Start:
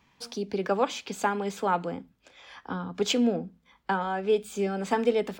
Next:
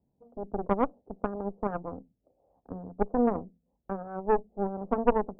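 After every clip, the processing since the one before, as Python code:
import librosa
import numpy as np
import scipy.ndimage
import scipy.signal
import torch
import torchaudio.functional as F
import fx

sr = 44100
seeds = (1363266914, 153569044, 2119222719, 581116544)

y = scipy.signal.sosfilt(scipy.signal.butter(8, 730.0, 'lowpass', fs=sr, output='sos'), x)
y = fx.cheby_harmonics(y, sr, harmonics=(2, 3, 6), levels_db=(-6, -14, -23), full_scale_db=-13.0)
y = y * 10.0 ** (1.0 / 20.0)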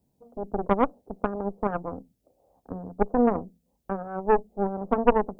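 y = fx.high_shelf(x, sr, hz=2800.0, db=10.5)
y = y * 10.0 ** (3.5 / 20.0)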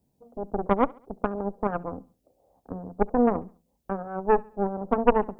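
y = fx.echo_feedback(x, sr, ms=69, feedback_pct=42, wet_db=-24.0)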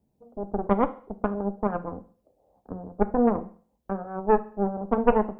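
y = fx.high_shelf(x, sr, hz=2300.0, db=-8.0)
y = fx.rev_fdn(y, sr, rt60_s=0.45, lf_ratio=0.75, hf_ratio=1.0, size_ms=28.0, drr_db=9.5)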